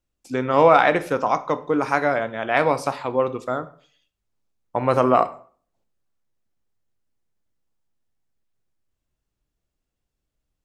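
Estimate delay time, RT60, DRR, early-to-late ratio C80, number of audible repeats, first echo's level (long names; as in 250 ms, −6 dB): no echo audible, 0.45 s, 11.0 dB, 20.5 dB, no echo audible, no echo audible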